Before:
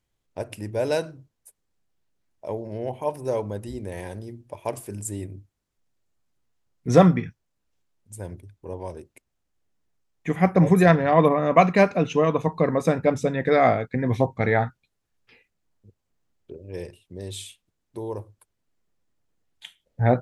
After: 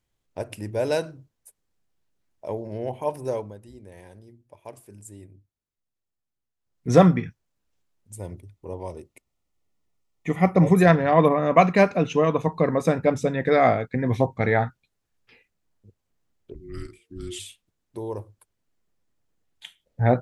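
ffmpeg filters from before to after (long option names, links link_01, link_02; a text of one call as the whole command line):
ffmpeg -i in.wav -filter_complex "[0:a]asettb=1/sr,asplit=3[link_01][link_02][link_03];[link_01]atrim=end=8.174[link_04];[link_02]atrim=start=8.17:end=10.77,asetpts=PTS-STARTPTS,afade=type=in:duration=0.004:curve=qsin,afade=type=out:start_time=2.596:duration=0.004:curve=qsin,asuperstop=centerf=1600:order=8:qfactor=6.4[link_05];[link_03]atrim=start=10.766[link_06];[link_04][link_05]acrossfade=duration=0.004:curve1=hsin:curve2=qsin[link_07];[link_07][link_06]acrossfade=duration=0.004:curve1=qsin:curve2=hsin,asplit=3[link_08][link_09][link_10];[link_08]afade=type=out:start_time=16.53:duration=0.02[link_11];[link_09]afreqshift=-460,afade=type=in:start_time=16.53:duration=0.02,afade=type=out:start_time=17.38:duration=0.02[link_12];[link_10]afade=type=in:start_time=17.38:duration=0.02[link_13];[link_11][link_12][link_13]amix=inputs=3:normalize=0,asplit=3[link_14][link_15][link_16];[link_14]atrim=end=3.56,asetpts=PTS-STARTPTS,afade=type=out:start_time=3.24:duration=0.32:silence=0.251189[link_17];[link_15]atrim=start=3.56:end=6.57,asetpts=PTS-STARTPTS,volume=-12dB[link_18];[link_16]atrim=start=6.57,asetpts=PTS-STARTPTS,afade=type=in:duration=0.32:silence=0.251189[link_19];[link_17][link_18][link_19]concat=n=3:v=0:a=1" out.wav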